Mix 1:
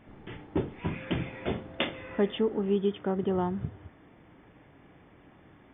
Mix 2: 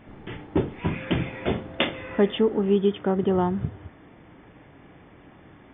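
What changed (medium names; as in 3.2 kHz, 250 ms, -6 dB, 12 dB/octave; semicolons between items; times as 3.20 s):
speech +6.0 dB; background +5.5 dB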